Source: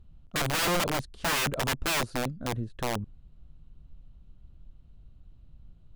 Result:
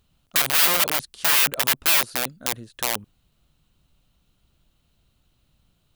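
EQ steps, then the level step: tilt EQ +4 dB/octave; dynamic bell 7.2 kHz, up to -6 dB, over -33 dBFS, Q 0.94; +3.0 dB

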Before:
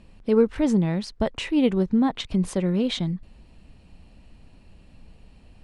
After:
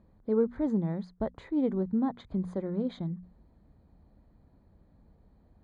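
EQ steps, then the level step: boxcar filter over 16 samples; high-pass 40 Hz; hum notches 60/120/180/240 Hz; -7.0 dB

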